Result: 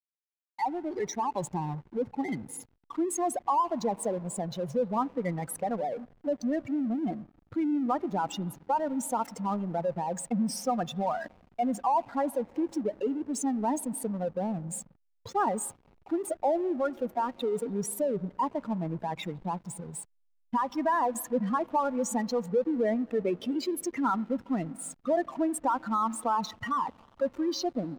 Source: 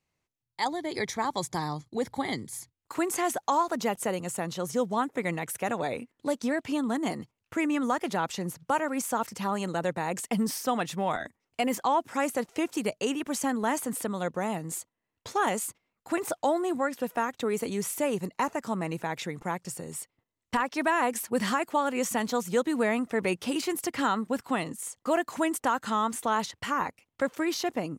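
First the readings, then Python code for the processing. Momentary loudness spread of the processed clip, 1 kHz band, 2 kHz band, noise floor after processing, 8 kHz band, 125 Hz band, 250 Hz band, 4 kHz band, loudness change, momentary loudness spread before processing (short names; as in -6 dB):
7 LU, -0.5 dB, -10.0 dB, -68 dBFS, -3.0 dB, +0.5 dB, 0.0 dB, -6.5 dB, -1.0 dB, 7 LU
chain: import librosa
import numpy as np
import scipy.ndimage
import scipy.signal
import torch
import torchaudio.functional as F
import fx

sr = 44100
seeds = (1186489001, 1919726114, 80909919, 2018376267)

y = fx.spec_expand(x, sr, power=2.6)
y = fx.rev_spring(y, sr, rt60_s=3.7, pass_ms=(44, 49), chirp_ms=40, drr_db=19.5)
y = fx.backlash(y, sr, play_db=-42.0)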